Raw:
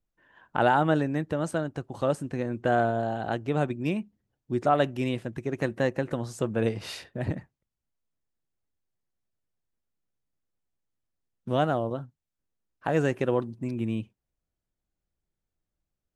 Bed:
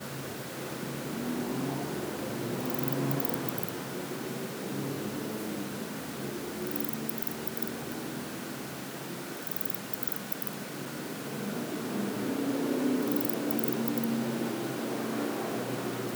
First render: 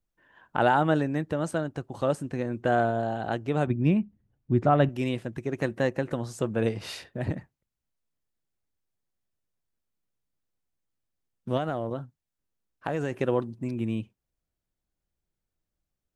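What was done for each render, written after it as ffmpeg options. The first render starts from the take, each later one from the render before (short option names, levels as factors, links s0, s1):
-filter_complex "[0:a]asettb=1/sr,asplit=3[s0][s1][s2];[s0]atrim=end=3.674[s3];[s1]atrim=start=3.67:end=4.89,asetpts=PTS-STARTPTS,afade=t=in:d=0.004:c=qsin,afade=t=out:st=1.216:d=0.004:c=qsin,bass=f=250:g=10,treble=f=4000:g=-12[s4];[s2]atrim=start=4.886[s5];[s3][s4]acrossfade=d=0.004:c1=hsin:c2=qsin[s6];[s6][s5]acrossfade=d=0.004:c1=qsin:c2=hsin,asettb=1/sr,asplit=3[s7][s8][s9];[s7]atrim=end=11.574[s10];[s8]atrim=start=11.57:end=13.14,asetpts=PTS-STARTPTS,afade=t=in:d=0.004:c=qsin,afade=t=out:st=1.566:d=0.004:c=qsin,acompressor=threshold=0.0631:ratio=6:attack=3.2:release=140:knee=1:detection=peak[s11];[s9]atrim=start=13.136[s12];[s10][s11]acrossfade=d=0.004:c1=hsin:c2=qsin[s13];[s13][s12]acrossfade=d=0.004:c1=qsin:c2=hsin"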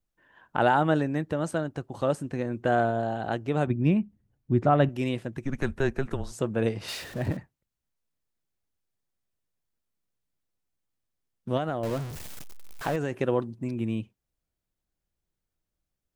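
-filter_complex "[0:a]asplit=3[s0][s1][s2];[s0]afade=t=out:st=5.43:d=0.02[s3];[s1]afreqshift=-140,afade=t=in:st=5.43:d=0.02,afade=t=out:st=6.31:d=0.02[s4];[s2]afade=t=in:st=6.31:d=0.02[s5];[s3][s4][s5]amix=inputs=3:normalize=0,asettb=1/sr,asplit=3[s6][s7][s8];[s6]atrim=end=6.884[s9];[s7]atrim=start=6.88:end=7.37,asetpts=PTS-STARTPTS,afade=t=in:d=0.004:c=qsin,afade=t=out:st=0.486:d=0.004:c=qsin,aeval=exprs='val(0)+0.5*0.0119*sgn(val(0))':c=same[s10];[s8]atrim=start=7.366[s11];[s9][s10]acrossfade=d=0.004:c1=hsin:c2=qsin[s12];[s12][s11]acrossfade=d=0.004:c1=qsin:c2=hsin,asettb=1/sr,asplit=3[s13][s14][s15];[s13]atrim=end=11.834[s16];[s14]atrim=start=11.83:end=12.96,asetpts=PTS-STARTPTS,afade=t=in:d=0.004:c=qsin,afade=t=out:st=1.126:d=0.004:c=qsin,aeval=exprs='val(0)+0.5*0.0266*sgn(val(0))':c=same[s17];[s15]atrim=start=12.956[s18];[s16][s17]acrossfade=d=0.004:c1=hsin:c2=qsin[s19];[s19][s18]acrossfade=d=0.004:c1=qsin:c2=hsin"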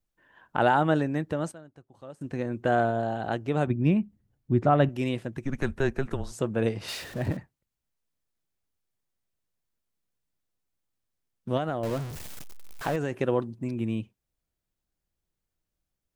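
-filter_complex "[0:a]asplit=3[s0][s1][s2];[s0]atrim=end=1.52,asetpts=PTS-STARTPTS,afade=t=out:st=1.06:d=0.46:c=log:silence=0.125893[s3];[s1]atrim=start=1.52:end=2.21,asetpts=PTS-STARTPTS,volume=0.126[s4];[s2]atrim=start=2.21,asetpts=PTS-STARTPTS,afade=t=in:d=0.46:c=log:silence=0.125893[s5];[s3][s4][s5]concat=n=3:v=0:a=1"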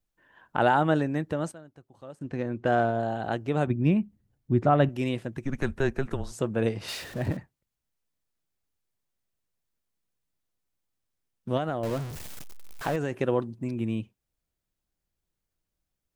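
-filter_complex "[0:a]asettb=1/sr,asplit=3[s0][s1][s2];[s0]atrim=end=2.194[s3];[s1]atrim=start=2.19:end=3,asetpts=PTS-STARTPTS,afade=t=in:d=0.004:c=qsin,afade=t=out:st=0.806:d=0.004:c=qsin,adynamicsmooth=sensitivity=8:basefreq=5700[s4];[s2]atrim=start=2.996[s5];[s3][s4]acrossfade=d=0.004:c1=hsin:c2=qsin[s6];[s6][s5]acrossfade=d=0.004:c1=qsin:c2=hsin"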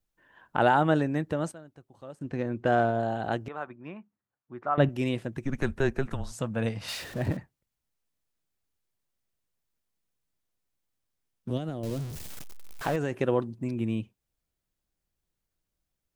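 -filter_complex "[0:a]asettb=1/sr,asplit=3[s0][s1][s2];[s0]atrim=end=3.484[s3];[s1]atrim=start=3.48:end=4.78,asetpts=PTS-STARTPTS,afade=t=in:d=0.004:c=qsin,afade=t=out:st=1.296:d=0.004:c=qsin,bandpass=f=1200:t=q:w=2[s4];[s2]atrim=start=4.776[s5];[s3][s4]acrossfade=d=0.004:c1=hsin:c2=qsin[s6];[s6][s5]acrossfade=d=0.004:c1=qsin:c2=hsin,asettb=1/sr,asplit=3[s7][s8][s9];[s7]atrim=end=6.104[s10];[s8]atrim=start=6.1:end=7,asetpts=PTS-STARTPTS,afade=t=in:d=0.004:c=qsin,afade=t=out:st=0.896:d=0.004:c=qsin,equalizer=f=380:t=o:w=0.48:g=-13[s11];[s9]atrim=start=6.996[s12];[s10][s11]acrossfade=d=0.004:c1=hsin:c2=qsin[s13];[s13][s12]acrossfade=d=0.004:c1=qsin:c2=hsin,asettb=1/sr,asplit=3[s14][s15][s16];[s14]atrim=end=11.504[s17];[s15]atrim=start=11.5:end=12.3,asetpts=PTS-STARTPTS,afade=t=in:d=0.004:c=qsin,afade=t=out:st=0.796:d=0.004:c=qsin,acrossover=split=440|3000[s18][s19][s20];[s19]acompressor=threshold=0.00158:ratio=2:attack=3.2:release=140:knee=2.83:detection=peak[s21];[s18][s21][s20]amix=inputs=3:normalize=0[s22];[s16]atrim=start=12.296[s23];[s17][s22]acrossfade=d=0.004:c1=hsin:c2=qsin[s24];[s24][s23]acrossfade=d=0.004:c1=qsin:c2=hsin"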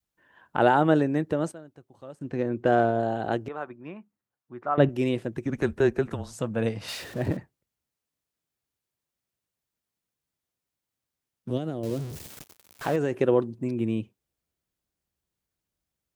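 -af "highpass=56,adynamicequalizer=threshold=0.01:dfrequency=390:dqfactor=1.3:tfrequency=390:tqfactor=1.3:attack=5:release=100:ratio=0.375:range=3:mode=boostabove:tftype=bell"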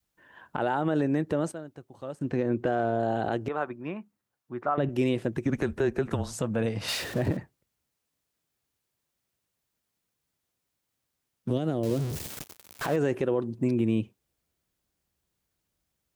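-filter_complex "[0:a]asplit=2[s0][s1];[s1]acompressor=threshold=0.0355:ratio=6,volume=0.794[s2];[s0][s2]amix=inputs=2:normalize=0,alimiter=limit=0.15:level=0:latency=1:release=98"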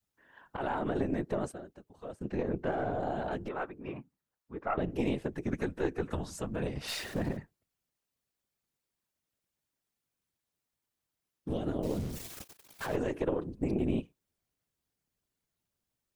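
-af "afftfilt=real='hypot(re,im)*cos(2*PI*random(0))':imag='hypot(re,im)*sin(2*PI*random(1))':win_size=512:overlap=0.75,aeval=exprs='0.133*(cos(1*acos(clip(val(0)/0.133,-1,1)))-cos(1*PI/2))+0.0422*(cos(2*acos(clip(val(0)/0.133,-1,1)))-cos(2*PI/2))':c=same"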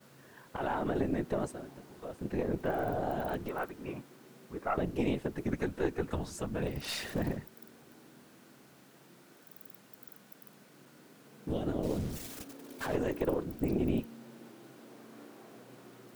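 -filter_complex "[1:a]volume=0.106[s0];[0:a][s0]amix=inputs=2:normalize=0"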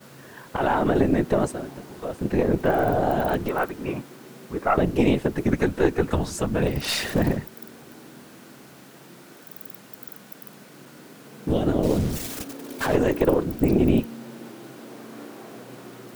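-af "volume=3.76"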